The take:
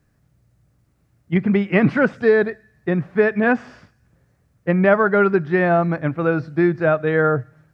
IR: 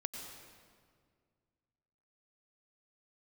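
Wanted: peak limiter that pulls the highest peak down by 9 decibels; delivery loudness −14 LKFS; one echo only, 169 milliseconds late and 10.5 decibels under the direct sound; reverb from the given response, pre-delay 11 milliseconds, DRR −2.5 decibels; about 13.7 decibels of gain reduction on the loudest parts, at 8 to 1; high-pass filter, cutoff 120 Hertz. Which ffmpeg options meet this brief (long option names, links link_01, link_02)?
-filter_complex "[0:a]highpass=120,acompressor=threshold=-25dB:ratio=8,alimiter=limit=-23dB:level=0:latency=1,aecho=1:1:169:0.299,asplit=2[link_01][link_02];[1:a]atrim=start_sample=2205,adelay=11[link_03];[link_02][link_03]afir=irnorm=-1:irlink=0,volume=3dB[link_04];[link_01][link_04]amix=inputs=2:normalize=0,volume=14dB"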